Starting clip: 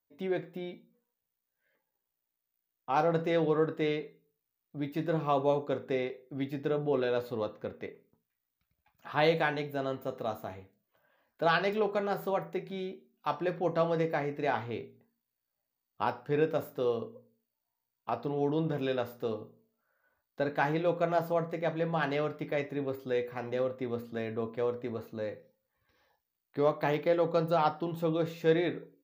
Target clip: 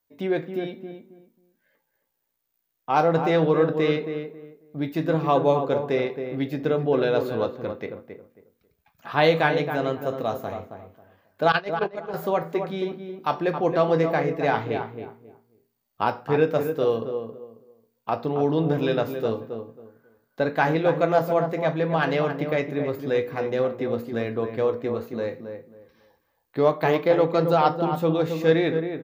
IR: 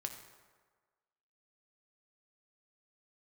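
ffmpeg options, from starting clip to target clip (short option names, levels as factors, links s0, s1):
-filter_complex "[0:a]asettb=1/sr,asplit=3[s0][s1][s2];[s0]atrim=end=11.524[s3];[s1]atrim=start=11.52:end=12.14,asetpts=PTS-STARTPTS,afade=t=in:d=0.004:c=qsin,afade=t=out:st=0.616:d=0.004:c=qsin,agate=range=0.126:threshold=0.0501:ratio=16:detection=peak[s4];[s2]atrim=start=12.136[s5];[s3][s4]acrossfade=d=0.004:c1=hsin:c2=qsin[s6];[s6][s5]acrossfade=d=0.004:c1=qsin:c2=hsin,asplit=2[s7][s8];[s8]adelay=271,lowpass=f=1500:p=1,volume=0.447,asplit=2[s9][s10];[s10]adelay=271,lowpass=f=1500:p=1,volume=0.24,asplit=2[s11][s12];[s12]adelay=271,lowpass=f=1500:p=1,volume=0.24[s13];[s7][s9][s11][s13]amix=inputs=4:normalize=0,volume=2.37"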